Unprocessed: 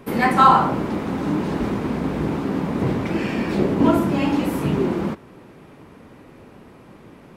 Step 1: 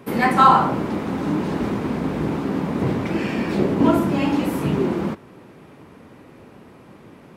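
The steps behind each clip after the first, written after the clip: high-pass 63 Hz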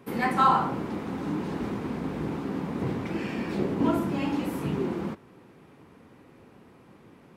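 band-stop 610 Hz, Q 13; trim -8 dB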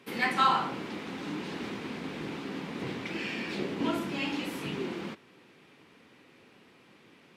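frequency weighting D; trim -5 dB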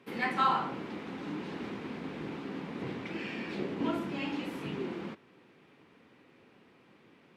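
treble shelf 3.1 kHz -10 dB; trim -1.5 dB

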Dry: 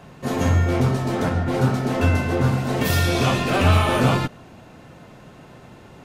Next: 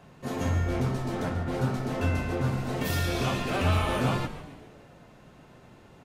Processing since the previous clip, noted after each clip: frequency-shifting echo 140 ms, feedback 55%, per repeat -140 Hz, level -13 dB; trim -8.5 dB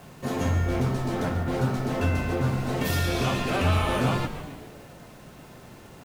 in parallel at -0.5 dB: compression, threshold -34 dBFS, peak gain reduction 13.5 dB; on the sum: bit crusher 9-bit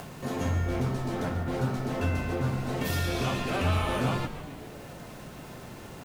upward compressor, threshold -31 dBFS; trim -3.5 dB

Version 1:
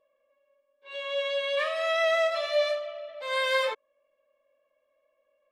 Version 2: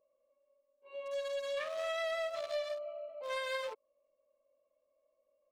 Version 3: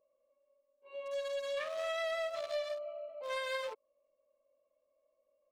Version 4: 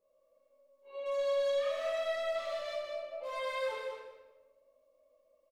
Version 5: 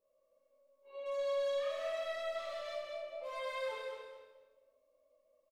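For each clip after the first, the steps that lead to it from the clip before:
local Wiener filter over 25 samples; treble shelf 5.1 kHz +5.5 dB; compression 5:1, threshold -32 dBFS, peak gain reduction 10 dB; trim -3 dB
no audible change
peak limiter -36.5 dBFS, peak gain reduction 9.5 dB; feedback delay 200 ms, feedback 17%, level -5.5 dB; simulated room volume 490 m³, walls mixed, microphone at 4.1 m; trim -4.5 dB
feedback delay 230 ms, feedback 19%, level -10 dB; trim -4 dB

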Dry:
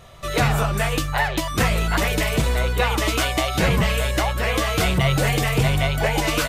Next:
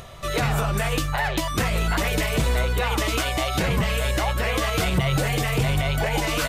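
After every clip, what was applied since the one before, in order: upward compressor, threshold -36 dBFS; peak limiter -14 dBFS, peak gain reduction 6.5 dB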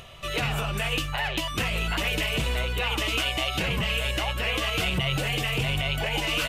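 peaking EQ 2.8 kHz +12 dB 0.52 oct; trim -6 dB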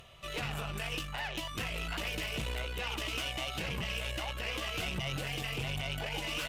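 valve stage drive 22 dB, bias 0.65; trim -6 dB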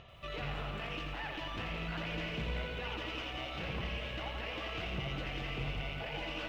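peak limiter -30.5 dBFS, peak gain reduction 6 dB; distance through air 220 m; bit-crushed delay 85 ms, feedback 80%, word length 12-bit, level -6.5 dB; trim +1 dB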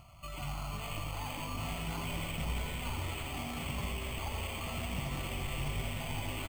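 static phaser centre 1.7 kHz, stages 6; frequency-shifting echo 483 ms, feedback 54%, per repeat -150 Hz, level -3.5 dB; careless resampling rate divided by 8×, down filtered, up hold; trim +2 dB

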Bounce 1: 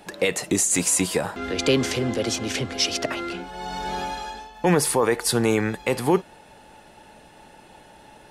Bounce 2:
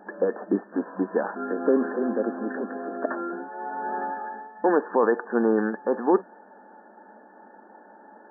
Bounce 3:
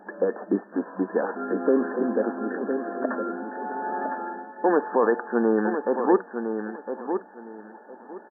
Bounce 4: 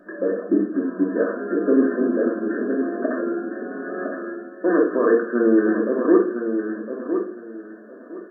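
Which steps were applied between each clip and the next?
FFT band-pass 190–1800 Hz
feedback delay 1009 ms, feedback 22%, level -7.5 dB
Butterworth band-stop 850 Hz, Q 2; simulated room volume 610 m³, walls furnished, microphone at 2.7 m

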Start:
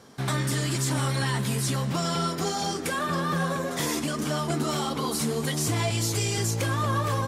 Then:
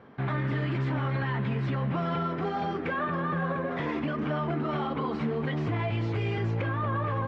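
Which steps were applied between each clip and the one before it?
low-pass 2.5 kHz 24 dB/octave; peak limiter -21.5 dBFS, peak gain reduction 5 dB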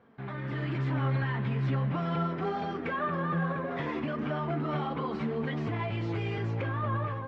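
level rider gain up to 7 dB; flange 0.36 Hz, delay 4.1 ms, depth 4.4 ms, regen +65%; trim -5 dB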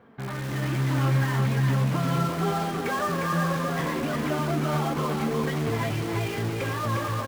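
in parallel at -8 dB: integer overflow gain 33 dB; on the sum: delay 355 ms -4 dB; trim +3.5 dB

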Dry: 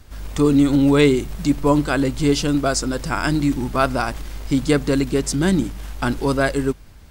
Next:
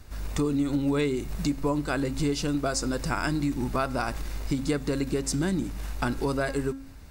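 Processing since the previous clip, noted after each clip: compression 4:1, threshold -22 dBFS, peak gain reduction 11 dB; band-stop 3.2 kHz, Q 9.7; de-hum 270.3 Hz, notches 33; trim -2 dB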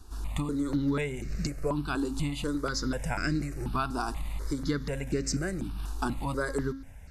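brick-wall FIR low-pass 13 kHz; stepped phaser 4.1 Hz 560–3300 Hz

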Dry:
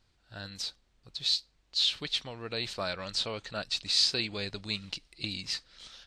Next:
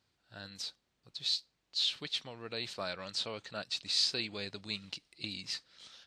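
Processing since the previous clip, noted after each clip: high-pass 110 Hz 12 dB/octave; trim -4.5 dB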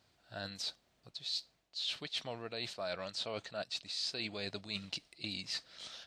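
peaking EQ 660 Hz +8 dB 0.35 oct; reverse; compression 6:1, threshold -42 dBFS, peak gain reduction 15 dB; reverse; trim +5.5 dB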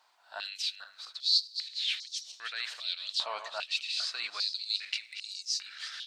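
backward echo that repeats 211 ms, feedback 47%, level -9 dB; step-sequenced high-pass 2.5 Hz 940–5800 Hz; trim +2.5 dB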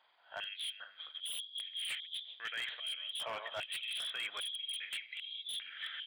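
knee-point frequency compression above 3 kHz 4:1; wavefolder -29.5 dBFS; graphic EQ 125/250/500/2000 Hz +10/+4/+8/+9 dB; trim -8 dB

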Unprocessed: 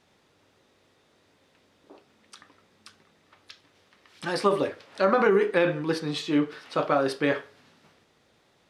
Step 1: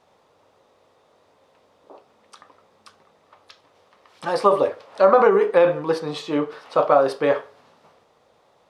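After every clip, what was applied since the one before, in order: high-order bell 740 Hz +10 dB; trim -1 dB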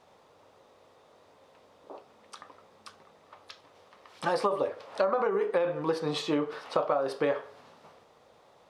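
compression 8:1, threshold -24 dBFS, peak gain reduction 14.5 dB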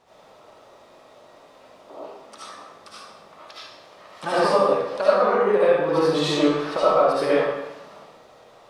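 reverberation RT60 0.90 s, pre-delay 35 ms, DRR -9.5 dB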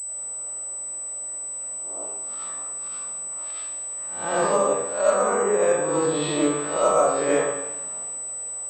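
reverse spectral sustain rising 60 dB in 0.50 s; gain riding 2 s; class-D stage that switches slowly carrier 8 kHz; trim -3.5 dB

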